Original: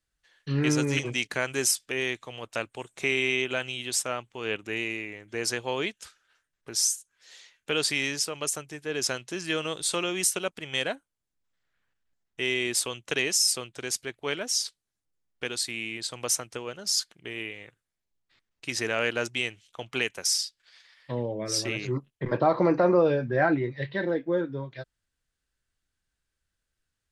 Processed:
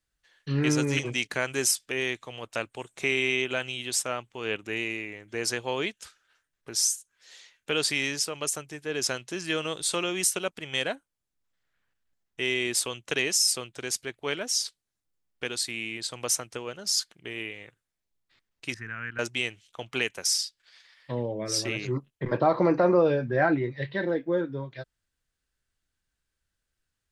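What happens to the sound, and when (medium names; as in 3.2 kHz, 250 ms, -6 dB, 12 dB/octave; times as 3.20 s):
18.74–19.19 s: FFT filter 120 Hz 0 dB, 250 Hz -9 dB, 560 Hz -28 dB, 1.6 kHz -2 dB, 3.6 kHz -26 dB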